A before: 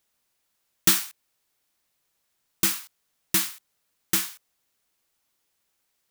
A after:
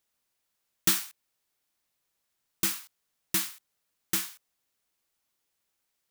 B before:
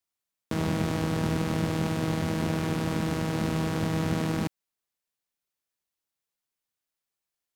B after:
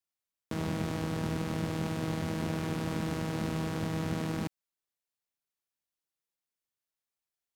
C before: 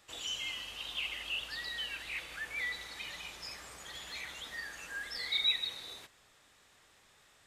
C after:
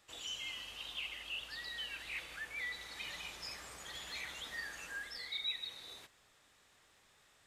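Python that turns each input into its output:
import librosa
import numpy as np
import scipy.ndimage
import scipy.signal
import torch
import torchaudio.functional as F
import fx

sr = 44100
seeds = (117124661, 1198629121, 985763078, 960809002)

y = fx.rider(x, sr, range_db=4, speed_s=0.5)
y = F.gain(torch.from_numpy(y), -5.0).numpy()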